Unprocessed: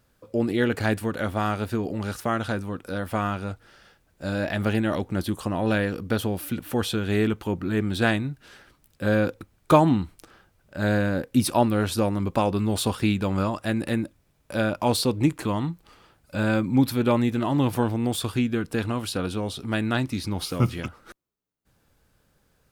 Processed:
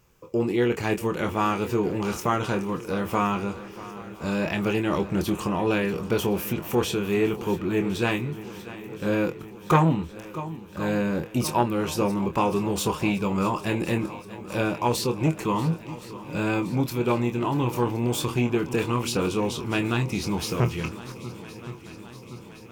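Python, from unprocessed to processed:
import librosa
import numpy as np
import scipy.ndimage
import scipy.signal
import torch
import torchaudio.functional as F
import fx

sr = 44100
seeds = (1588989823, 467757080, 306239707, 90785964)

y = fx.ripple_eq(x, sr, per_octave=0.75, db=9)
y = fx.rider(y, sr, range_db=3, speed_s=0.5)
y = fx.doubler(y, sr, ms=25.0, db=-7.5)
y = fx.echo_swing(y, sr, ms=1068, ratio=1.5, feedback_pct=60, wet_db=-17)
y = fx.transformer_sat(y, sr, knee_hz=600.0)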